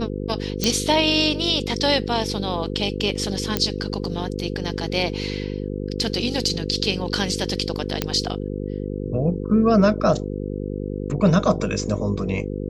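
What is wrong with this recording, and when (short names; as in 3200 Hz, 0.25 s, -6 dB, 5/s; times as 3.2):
buzz 50 Hz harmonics 10 -28 dBFS
0.64 pop -5 dBFS
3.57 pop -5 dBFS
8.02 pop -5 dBFS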